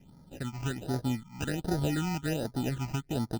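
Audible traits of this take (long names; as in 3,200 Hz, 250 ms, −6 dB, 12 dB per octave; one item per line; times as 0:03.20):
aliases and images of a low sample rate 1,100 Hz, jitter 0%
phaser sweep stages 8, 1.3 Hz, lowest notch 470–2,700 Hz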